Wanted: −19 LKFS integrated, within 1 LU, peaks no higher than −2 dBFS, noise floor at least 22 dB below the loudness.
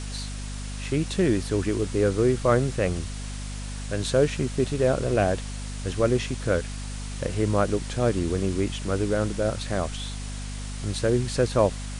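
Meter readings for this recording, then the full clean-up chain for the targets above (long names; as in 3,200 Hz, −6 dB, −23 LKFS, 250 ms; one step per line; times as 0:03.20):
mains hum 50 Hz; hum harmonics up to 250 Hz; level of the hum −31 dBFS; background noise floor −34 dBFS; target noise floor −48 dBFS; integrated loudness −26.0 LKFS; sample peak −8.0 dBFS; target loudness −19.0 LKFS
→ mains-hum notches 50/100/150/200/250 Hz
broadband denoise 14 dB, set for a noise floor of −34 dBFS
level +7 dB
brickwall limiter −2 dBFS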